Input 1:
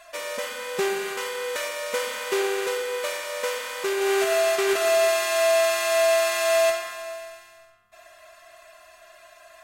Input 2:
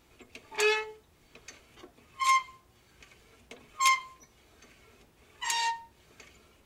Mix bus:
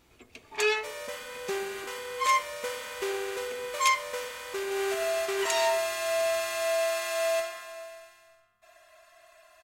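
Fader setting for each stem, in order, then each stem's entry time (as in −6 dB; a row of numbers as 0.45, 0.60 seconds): −7.5, 0.0 decibels; 0.70, 0.00 seconds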